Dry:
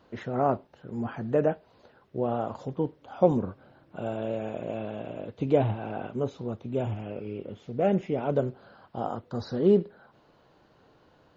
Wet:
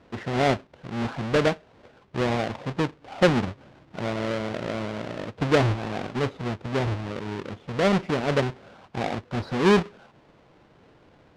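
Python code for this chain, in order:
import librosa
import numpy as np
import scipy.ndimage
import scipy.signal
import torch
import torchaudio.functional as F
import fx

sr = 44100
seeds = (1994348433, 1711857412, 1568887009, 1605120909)

p1 = fx.halfwave_hold(x, sr)
p2 = scipy.signal.sosfilt(scipy.signal.butter(2, 3900.0, 'lowpass', fs=sr, output='sos'), p1)
p3 = 10.0 ** (-20.5 / 20.0) * np.tanh(p2 / 10.0 ** (-20.5 / 20.0))
p4 = p2 + F.gain(torch.from_numpy(p3), -10.0).numpy()
y = F.gain(torch.from_numpy(p4), -2.0).numpy()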